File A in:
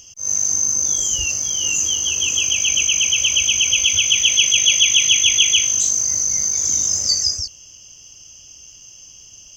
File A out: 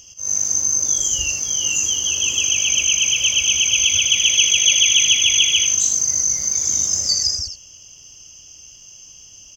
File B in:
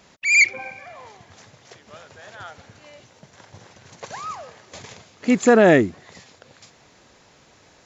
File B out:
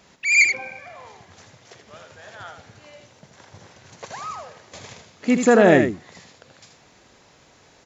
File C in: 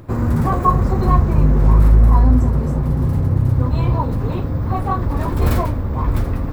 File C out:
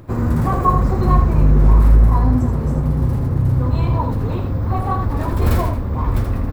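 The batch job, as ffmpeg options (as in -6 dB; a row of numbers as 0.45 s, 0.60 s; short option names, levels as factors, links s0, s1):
-af "aecho=1:1:80:0.447,volume=0.891"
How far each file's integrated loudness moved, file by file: 0.0 LU, -0.5 LU, -0.5 LU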